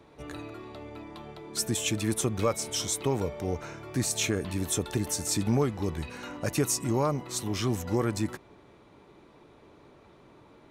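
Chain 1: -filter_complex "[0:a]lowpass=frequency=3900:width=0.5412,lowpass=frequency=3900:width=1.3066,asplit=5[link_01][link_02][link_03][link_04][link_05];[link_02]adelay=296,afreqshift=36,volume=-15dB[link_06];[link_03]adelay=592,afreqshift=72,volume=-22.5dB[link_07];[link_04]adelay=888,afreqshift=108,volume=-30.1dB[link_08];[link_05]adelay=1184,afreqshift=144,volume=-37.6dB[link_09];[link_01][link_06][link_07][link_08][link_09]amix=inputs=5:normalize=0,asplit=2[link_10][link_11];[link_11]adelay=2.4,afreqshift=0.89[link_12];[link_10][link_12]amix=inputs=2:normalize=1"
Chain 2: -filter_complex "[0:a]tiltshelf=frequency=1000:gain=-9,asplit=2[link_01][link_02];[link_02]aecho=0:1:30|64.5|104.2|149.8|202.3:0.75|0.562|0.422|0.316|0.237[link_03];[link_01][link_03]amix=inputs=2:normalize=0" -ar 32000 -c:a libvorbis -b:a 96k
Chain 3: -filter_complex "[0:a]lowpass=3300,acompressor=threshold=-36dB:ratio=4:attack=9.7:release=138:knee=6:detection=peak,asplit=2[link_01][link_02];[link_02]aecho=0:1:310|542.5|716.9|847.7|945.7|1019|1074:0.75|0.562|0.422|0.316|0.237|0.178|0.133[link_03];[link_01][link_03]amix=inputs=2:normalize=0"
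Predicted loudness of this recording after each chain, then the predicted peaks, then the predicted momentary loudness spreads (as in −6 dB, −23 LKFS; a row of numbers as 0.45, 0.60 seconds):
−34.0, −22.0, −36.5 LKFS; −16.5, −5.0, −21.5 dBFS; 14, 21, 17 LU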